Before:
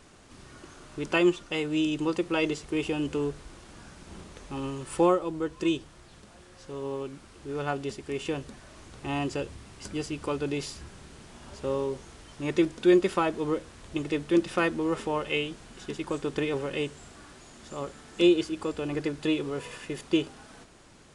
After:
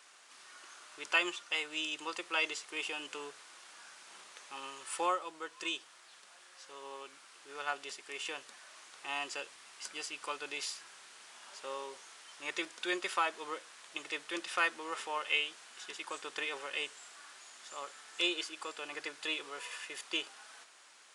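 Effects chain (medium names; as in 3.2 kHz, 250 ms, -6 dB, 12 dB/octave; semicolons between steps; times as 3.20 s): high-pass 1.1 kHz 12 dB/octave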